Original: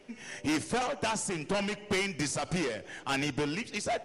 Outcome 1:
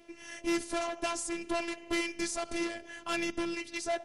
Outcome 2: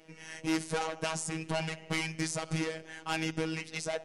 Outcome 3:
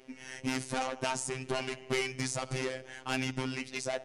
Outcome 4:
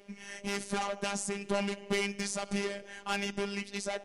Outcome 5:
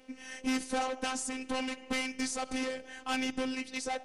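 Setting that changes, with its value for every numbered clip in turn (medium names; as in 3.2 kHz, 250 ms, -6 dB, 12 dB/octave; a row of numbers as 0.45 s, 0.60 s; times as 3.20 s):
robot voice, frequency: 340 Hz, 160 Hz, 130 Hz, 200 Hz, 260 Hz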